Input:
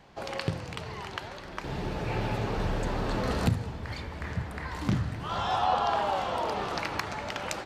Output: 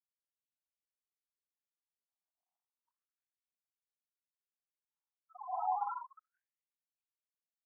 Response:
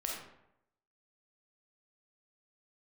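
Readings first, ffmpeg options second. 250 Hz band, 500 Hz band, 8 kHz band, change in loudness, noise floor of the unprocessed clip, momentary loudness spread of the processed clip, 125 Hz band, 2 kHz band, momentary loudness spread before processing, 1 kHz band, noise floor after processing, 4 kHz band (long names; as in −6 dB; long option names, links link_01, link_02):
below −40 dB, −24.5 dB, below −35 dB, −6.0 dB, −42 dBFS, 16 LU, below −40 dB, below −35 dB, 11 LU, −11.5 dB, below −85 dBFS, below −40 dB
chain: -filter_complex "[0:a]equalizer=frequency=3800:width_type=o:width=2.5:gain=5,bandreject=frequency=50:width_type=h:width=6,bandreject=frequency=100:width_type=h:width=6,bandreject=frequency=150:width_type=h:width=6,bandreject=frequency=200:width_type=h:width=6,bandreject=frequency=250:width_type=h:width=6,bandreject=frequency=300:width_type=h:width=6,bandreject=frequency=350:width_type=h:width=6,bandreject=frequency=400:width_type=h:width=6,flanger=delay=3:depth=5.8:regen=69:speed=0.72:shape=sinusoidal,asplit=2[link_01][link_02];[link_02]adelay=44,volume=-6dB[link_03];[link_01][link_03]amix=inputs=2:normalize=0,aecho=1:1:129|585:0.266|0.668,asplit=2[link_04][link_05];[1:a]atrim=start_sample=2205,adelay=131[link_06];[link_05][link_06]afir=irnorm=-1:irlink=0,volume=-22.5dB[link_07];[link_04][link_07]amix=inputs=2:normalize=0,afwtdn=0.00794,afftfilt=real='re*gte(hypot(re,im),0.141)':imag='im*gte(hypot(re,im),0.141)':win_size=1024:overlap=0.75,highpass=210,highshelf=frequency=4800:gain=-3,afftfilt=real='re*between(b*sr/1024,900*pow(3300/900,0.5+0.5*sin(2*PI*0.32*pts/sr))/1.41,900*pow(3300/900,0.5+0.5*sin(2*PI*0.32*pts/sr))*1.41)':imag='im*between(b*sr/1024,900*pow(3300/900,0.5+0.5*sin(2*PI*0.32*pts/sr))/1.41,900*pow(3300/900,0.5+0.5*sin(2*PI*0.32*pts/sr))*1.41)':win_size=1024:overlap=0.75,volume=-4.5dB"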